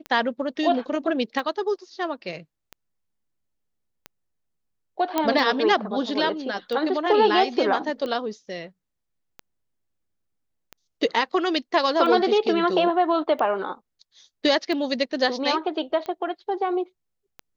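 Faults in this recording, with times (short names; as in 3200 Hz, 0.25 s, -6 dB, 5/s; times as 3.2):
tick 45 rpm -20 dBFS
5.18 pop -8 dBFS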